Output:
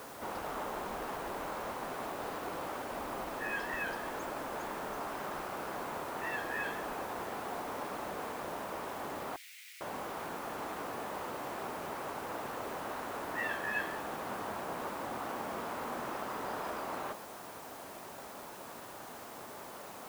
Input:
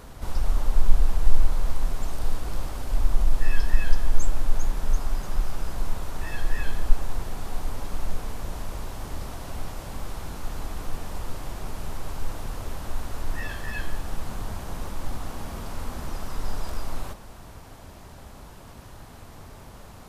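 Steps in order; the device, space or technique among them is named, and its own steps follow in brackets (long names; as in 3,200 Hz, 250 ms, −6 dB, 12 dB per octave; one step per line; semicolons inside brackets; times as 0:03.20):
wax cylinder (band-pass filter 340–2,200 Hz; tape wow and flutter; white noise bed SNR 14 dB)
0:09.36–0:09.81: elliptic high-pass filter 2,100 Hz, stop band 60 dB
level +3 dB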